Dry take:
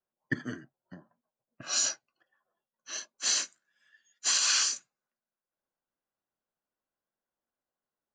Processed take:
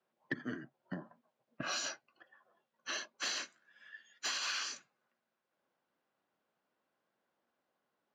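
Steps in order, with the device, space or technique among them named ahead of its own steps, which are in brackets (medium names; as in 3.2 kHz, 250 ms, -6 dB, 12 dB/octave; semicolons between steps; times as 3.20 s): AM radio (band-pass 150–3300 Hz; compression 5:1, threshold -47 dBFS, peak gain reduction 19 dB; saturation -34.5 dBFS, distortion -25 dB); trim +10.5 dB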